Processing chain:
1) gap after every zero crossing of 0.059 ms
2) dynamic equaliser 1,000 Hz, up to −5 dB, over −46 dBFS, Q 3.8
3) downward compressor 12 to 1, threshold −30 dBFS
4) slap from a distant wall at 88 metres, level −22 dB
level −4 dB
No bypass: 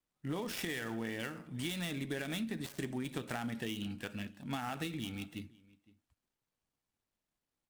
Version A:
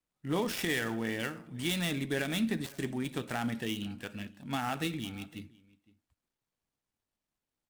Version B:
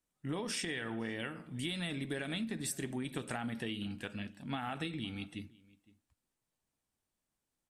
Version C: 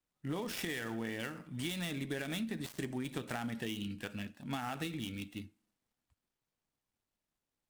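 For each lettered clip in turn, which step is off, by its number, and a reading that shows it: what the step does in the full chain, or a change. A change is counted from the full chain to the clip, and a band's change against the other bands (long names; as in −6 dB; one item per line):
3, average gain reduction 3.5 dB
1, distortion level −10 dB
4, echo-to-direct ratio −23.5 dB to none audible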